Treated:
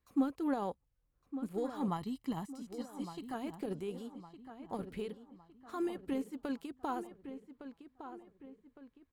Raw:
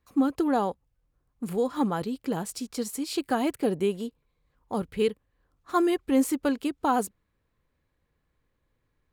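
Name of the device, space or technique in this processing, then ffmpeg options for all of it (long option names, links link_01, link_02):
de-esser from a sidechain: -filter_complex "[0:a]asplit=2[link_01][link_02];[link_02]highpass=frequency=4900:width=0.5412,highpass=frequency=4900:width=1.3066,apad=whole_len=402359[link_03];[link_01][link_03]sidechaincompress=threshold=-56dB:ratio=8:attack=4:release=33,asettb=1/sr,asplit=3[link_04][link_05][link_06];[link_04]atrim=end=1.884[link_07];[link_05]atrim=start=1.88:end=3.34,asetpts=PTS-STARTPTS,afade=type=in:duration=0.004:curve=qsin,afade=type=out:start_time=1.456:duration=0.004:curve=qsin,aecho=1:1:1:0.66,atrim=end_sample=64386[link_08];[link_06]atrim=start=3.336[link_09];[link_07][link_08]acrossfade=duration=0.004:curve1=hsin:curve2=qsin[link_10];[link_10][link_09]acrossfade=duration=0.004:curve1=qsin:curve2=hsin,asplit=2[link_11][link_12];[link_12]adelay=1160,lowpass=frequency=2900:poles=1,volume=-10.5dB,asplit=2[link_13][link_14];[link_14]adelay=1160,lowpass=frequency=2900:poles=1,volume=0.45,asplit=2[link_15][link_16];[link_16]adelay=1160,lowpass=frequency=2900:poles=1,volume=0.45,asplit=2[link_17][link_18];[link_18]adelay=1160,lowpass=frequency=2900:poles=1,volume=0.45,asplit=2[link_19][link_20];[link_20]adelay=1160,lowpass=frequency=2900:poles=1,volume=0.45[link_21];[link_11][link_13][link_15][link_17][link_19][link_21]amix=inputs=6:normalize=0,volume=-7dB"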